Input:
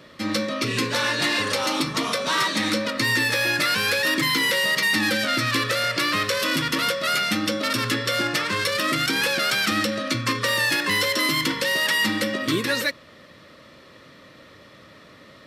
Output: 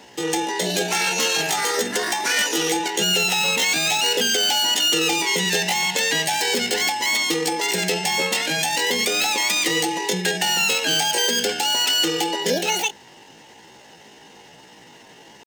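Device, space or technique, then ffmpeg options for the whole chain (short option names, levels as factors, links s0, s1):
chipmunk voice: -af "asetrate=68011,aresample=44100,atempo=0.64842,volume=1.26"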